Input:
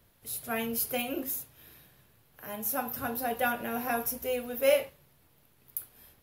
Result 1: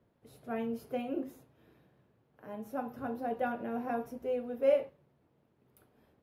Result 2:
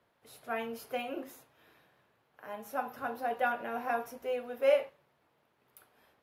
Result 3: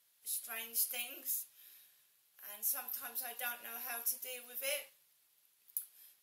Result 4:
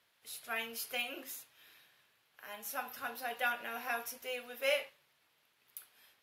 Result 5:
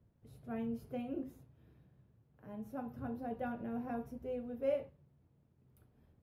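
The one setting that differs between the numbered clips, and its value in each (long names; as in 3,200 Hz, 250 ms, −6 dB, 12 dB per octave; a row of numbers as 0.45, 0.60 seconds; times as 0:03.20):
resonant band-pass, frequency: 320, 880, 7,700, 2,700, 120 Hertz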